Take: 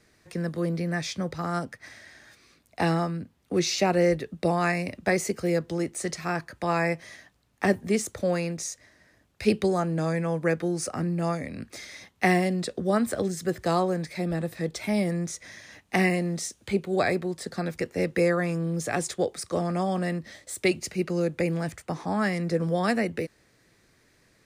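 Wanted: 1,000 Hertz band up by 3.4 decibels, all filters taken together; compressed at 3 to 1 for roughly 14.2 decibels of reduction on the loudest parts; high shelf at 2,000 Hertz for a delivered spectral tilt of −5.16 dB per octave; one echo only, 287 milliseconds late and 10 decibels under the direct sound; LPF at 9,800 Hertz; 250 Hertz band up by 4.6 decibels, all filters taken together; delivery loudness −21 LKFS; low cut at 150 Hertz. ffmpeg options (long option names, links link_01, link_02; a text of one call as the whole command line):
ffmpeg -i in.wav -af "highpass=150,lowpass=9800,equalizer=frequency=250:width_type=o:gain=9,equalizer=frequency=1000:width_type=o:gain=6,highshelf=frequency=2000:gain=-7.5,acompressor=threshold=-33dB:ratio=3,aecho=1:1:287:0.316,volume=13.5dB" out.wav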